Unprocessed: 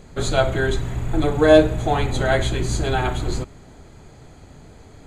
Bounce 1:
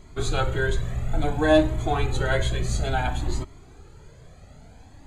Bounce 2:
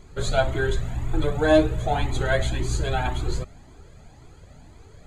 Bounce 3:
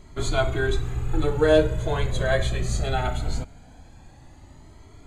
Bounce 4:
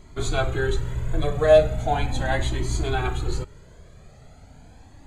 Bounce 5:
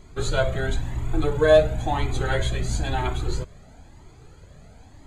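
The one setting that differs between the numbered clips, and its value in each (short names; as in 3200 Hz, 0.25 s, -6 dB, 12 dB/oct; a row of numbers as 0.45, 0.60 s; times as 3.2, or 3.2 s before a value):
cascading flanger, rate: 0.58, 1.9, 0.21, 0.38, 0.99 Hz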